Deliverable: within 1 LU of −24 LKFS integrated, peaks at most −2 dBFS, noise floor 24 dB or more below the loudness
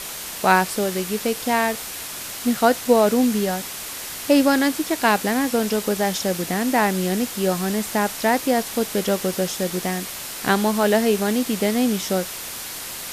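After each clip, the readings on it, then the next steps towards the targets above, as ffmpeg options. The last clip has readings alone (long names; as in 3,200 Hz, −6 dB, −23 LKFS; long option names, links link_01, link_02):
background noise floor −33 dBFS; target noise floor −46 dBFS; integrated loudness −21.5 LKFS; sample peak −2.5 dBFS; target loudness −24.0 LKFS
→ -af "afftdn=noise_reduction=13:noise_floor=-33"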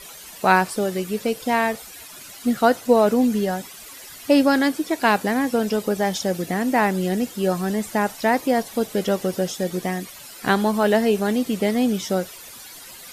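background noise floor −41 dBFS; target noise floor −46 dBFS
→ -af "afftdn=noise_reduction=6:noise_floor=-41"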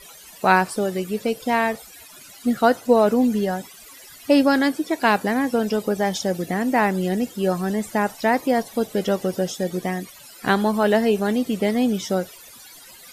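background noise floor −45 dBFS; target noise floor −46 dBFS
→ -af "afftdn=noise_reduction=6:noise_floor=-45"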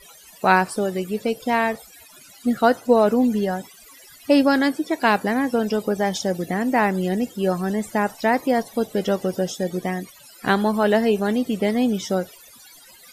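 background noise floor −48 dBFS; integrated loudness −21.5 LKFS; sample peak −2.5 dBFS; target loudness −24.0 LKFS
→ -af "volume=-2.5dB"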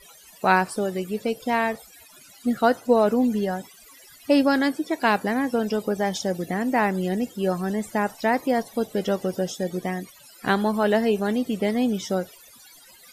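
integrated loudness −24.0 LKFS; sample peak −5.0 dBFS; background noise floor −50 dBFS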